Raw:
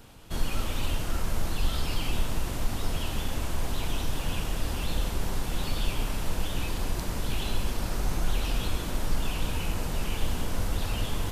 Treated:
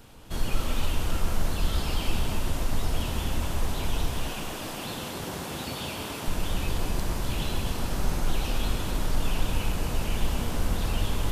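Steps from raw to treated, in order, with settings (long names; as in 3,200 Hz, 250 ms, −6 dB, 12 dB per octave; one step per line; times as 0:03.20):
0:04.14–0:06.28: gate on every frequency bin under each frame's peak −15 dB weak
delay that swaps between a low-pass and a high-pass 127 ms, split 1,300 Hz, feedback 61%, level −2.5 dB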